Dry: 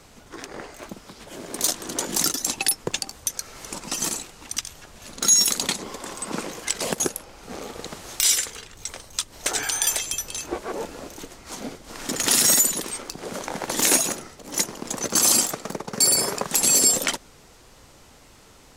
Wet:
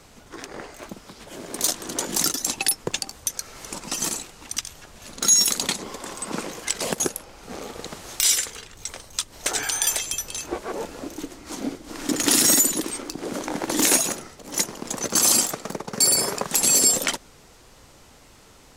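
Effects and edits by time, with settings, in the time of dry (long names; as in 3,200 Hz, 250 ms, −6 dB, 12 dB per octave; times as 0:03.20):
0:11.02–0:13.86: parametric band 300 Hz +11 dB 0.51 octaves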